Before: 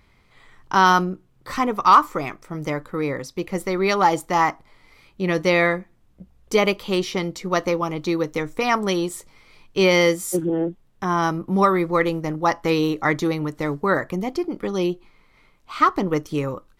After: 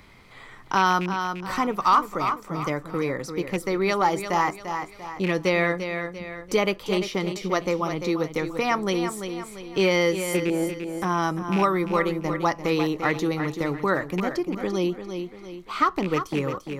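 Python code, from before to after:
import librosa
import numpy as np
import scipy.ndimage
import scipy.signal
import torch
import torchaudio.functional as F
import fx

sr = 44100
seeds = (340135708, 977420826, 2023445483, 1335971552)

y = fx.rattle_buzz(x, sr, strikes_db=-25.0, level_db=-18.0)
y = fx.echo_feedback(y, sr, ms=344, feedback_pct=31, wet_db=-10)
y = fx.band_squash(y, sr, depth_pct=40)
y = y * librosa.db_to_amplitude(-3.5)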